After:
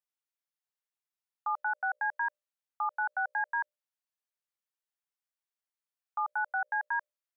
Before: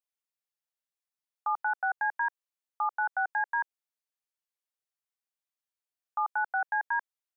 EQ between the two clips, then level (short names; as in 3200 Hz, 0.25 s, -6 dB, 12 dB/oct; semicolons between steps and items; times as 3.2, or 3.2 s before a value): HPF 460 Hz 24 dB/oct; bell 1500 Hz +3 dB 1.6 oct; notches 60/120/180/240/300/360/420/480/540/600 Hz; -4.5 dB